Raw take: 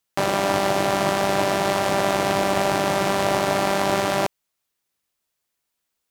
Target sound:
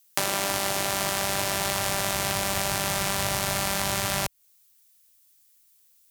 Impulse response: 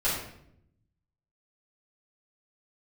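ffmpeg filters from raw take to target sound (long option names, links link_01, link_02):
-filter_complex "[0:a]acrossover=split=270|2700[link_01][link_02][link_03];[link_01]acompressor=threshold=-33dB:ratio=4[link_04];[link_02]acompressor=threshold=-26dB:ratio=4[link_05];[link_03]acompressor=threshold=-40dB:ratio=4[link_06];[link_04][link_05][link_06]amix=inputs=3:normalize=0,asubboost=boost=8:cutoff=110,crystalizer=i=9:c=0,volume=-5dB"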